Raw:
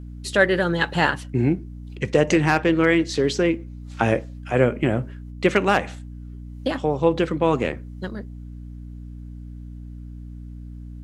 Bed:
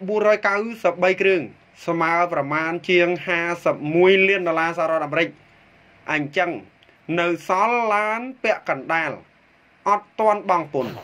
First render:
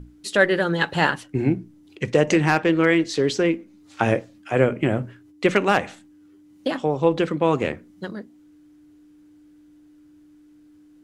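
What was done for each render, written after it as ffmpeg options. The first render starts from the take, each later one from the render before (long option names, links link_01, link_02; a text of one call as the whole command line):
ffmpeg -i in.wav -af "bandreject=frequency=60:width_type=h:width=6,bandreject=frequency=120:width_type=h:width=6,bandreject=frequency=180:width_type=h:width=6,bandreject=frequency=240:width_type=h:width=6" out.wav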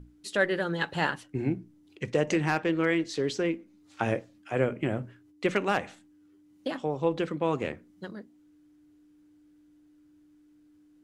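ffmpeg -i in.wav -af "volume=-8dB" out.wav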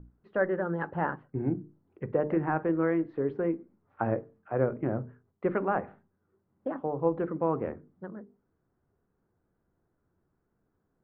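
ffmpeg -i in.wav -af "lowpass=frequency=1400:width=0.5412,lowpass=frequency=1400:width=1.3066,bandreject=frequency=50:width_type=h:width=6,bandreject=frequency=100:width_type=h:width=6,bandreject=frequency=150:width_type=h:width=6,bandreject=frequency=200:width_type=h:width=6,bandreject=frequency=250:width_type=h:width=6,bandreject=frequency=300:width_type=h:width=6,bandreject=frequency=350:width_type=h:width=6,bandreject=frequency=400:width_type=h:width=6,bandreject=frequency=450:width_type=h:width=6" out.wav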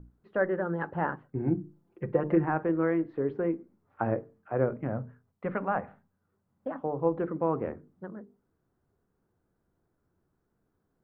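ffmpeg -i in.wav -filter_complex "[0:a]asettb=1/sr,asplit=3[link_01][link_02][link_03];[link_01]atrim=end=1.474[link_04];[link_02]atrim=start=1.47:end=2.45,asetpts=PTS-STARTPTS,afade=type=in:duration=0.004:curve=qsin,afade=type=out:start_time=0.976:duration=0.004:curve=qsin,aecho=1:1:5.8:0.64,atrim=end_sample=43218[link_05];[link_03]atrim=start=2.446[link_06];[link_04][link_05]acrossfade=duration=0.004:curve1=hsin:curve2=qsin[link_07];[link_07][link_06]acrossfade=duration=0.004:curve1=qsin:curve2=hsin,asettb=1/sr,asplit=3[link_08][link_09][link_10];[link_08]atrim=end=4.754[link_11];[link_09]atrim=start=4.75:end=6.84,asetpts=PTS-STARTPTS,afade=type=in:duration=0.004:curve=qsin,afade=type=out:start_time=2.086:duration=0.004:curve=qsin,equalizer=frequency=360:width_type=o:width=0.37:gain=-12.5[link_12];[link_10]atrim=start=6.836[link_13];[link_11][link_12]acrossfade=duration=0.004:curve1=hsin:curve2=qsin[link_14];[link_14][link_13]acrossfade=duration=0.004:curve1=qsin:curve2=hsin" out.wav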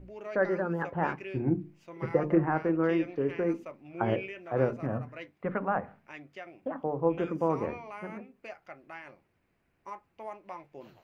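ffmpeg -i in.wav -i bed.wav -filter_complex "[1:a]volume=-24dB[link_01];[0:a][link_01]amix=inputs=2:normalize=0" out.wav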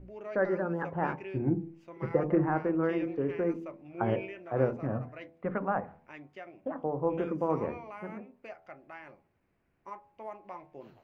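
ffmpeg -i in.wav -af "highshelf=frequency=2500:gain=-8.5,bandreject=frequency=82.63:width_type=h:width=4,bandreject=frequency=165.26:width_type=h:width=4,bandreject=frequency=247.89:width_type=h:width=4,bandreject=frequency=330.52:width_type=h:width=4,bandreject=frequency=413.15:width_type=h:width=4,bandreject=frequency=495.78:width_type=h:width=4,bandreject=frequency=578.41:width_type=h:width=4,bandreject=frequency=661.04:width_type=h:width=4,bandreject=frequency=743.67:width_type=h:width=4,bandreject=frequency=826.3:width_type=h:width=4,bandreject=frequency=908.93:width_type=h:width=4,bandreject=frequency=991.56:width_type=h:width=4,bandreject=frequency=1074.19:width_type=h:width=4" out.wav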